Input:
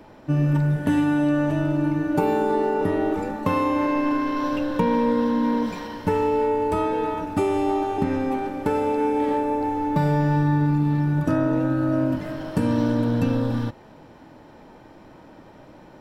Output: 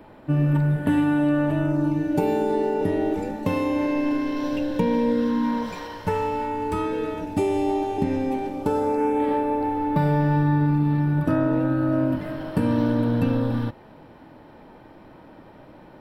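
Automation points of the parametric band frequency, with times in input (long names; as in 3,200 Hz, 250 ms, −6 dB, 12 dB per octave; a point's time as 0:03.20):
parametric band −12.5 dB 0.6 octaves
0:01.59 5,900 Hz
0:02.01 1,200 Hz
0:05.10 1,200 Hz
0:05.82 200 Hz
0:07.36 1,300 Hz
0:08.47 1,300 Hz
0:09.31 6,500 Hz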